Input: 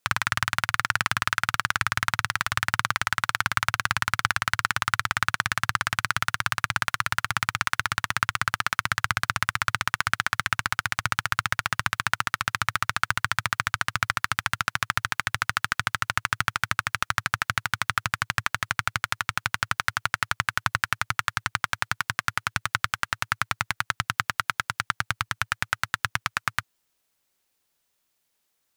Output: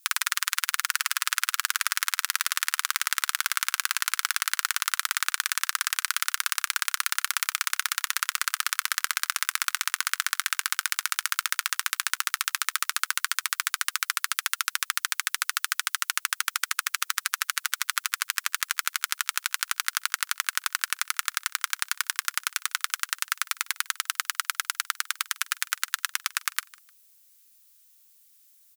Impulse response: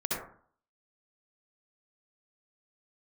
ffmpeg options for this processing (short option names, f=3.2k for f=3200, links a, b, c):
-filter_complex "[0:a]highpass=f=960:w=0.5412,highpass=f=960:w=1.3066,alimiter=limit=-12dB:level=0:latency=1:release=12,crystalizer=i=7.5:c=0,asplit=2[a][b];[b]aecho=0:1:152|304:0.0794|0.023[c];[a][c]amix=inputs=2:normalize=0,volume=-5dB"